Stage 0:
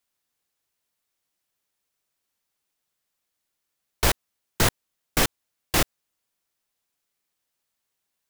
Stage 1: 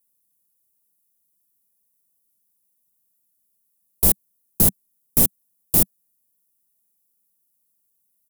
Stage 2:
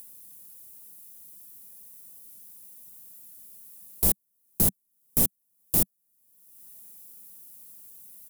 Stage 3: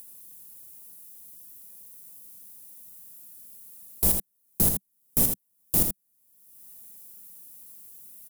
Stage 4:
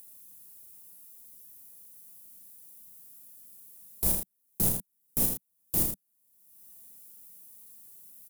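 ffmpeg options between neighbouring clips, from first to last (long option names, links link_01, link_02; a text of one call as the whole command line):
ffmpeg -i in.wav -af "firequalizer=gain_entry='entry(130,0);entry(190,9);entry(300,0);entry(1500,-17);entry(11000,13)':delay=0.05:min_phase=1" out.wav
ffmpeg -i in.wav -af "acompressor=mode=upward:threshold=-20dB:ratio=2.5,volume=-6dB" out.wav
ffmpeg -i in.wav -af "aecho=1:1:80:0.473" out.wav
ffmpeg -i in.wav -filter_complex "[0:a]asplit=2[link_01][link_02];[link_02]adelay=33,volume=-4dB[link_03];[link_01][link_03]amix=inputs=2:normalize=0,volume=-5.5dB" out.wav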